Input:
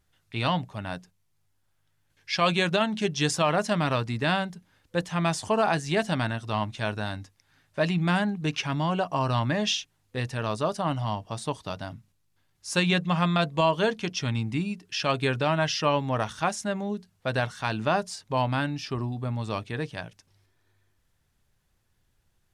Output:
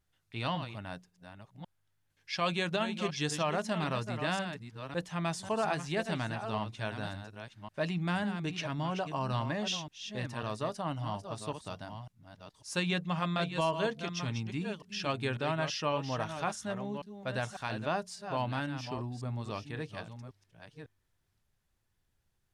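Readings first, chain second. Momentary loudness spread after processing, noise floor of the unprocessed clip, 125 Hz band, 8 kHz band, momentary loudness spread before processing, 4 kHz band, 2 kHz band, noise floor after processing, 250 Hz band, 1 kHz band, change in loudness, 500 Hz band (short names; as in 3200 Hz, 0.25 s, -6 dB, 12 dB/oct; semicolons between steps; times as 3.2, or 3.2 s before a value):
15 LU, -71 dBFS, -7.5 dB, -7.5 dB, 10 LU, -7.5 dB, -7.5 dB, -77 dBFS, -7.5 dB, -7.5 dB, -7.5 dB, -7.5 dB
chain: reverse delay 0.549 s, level -8.5 dB; gain -8 dB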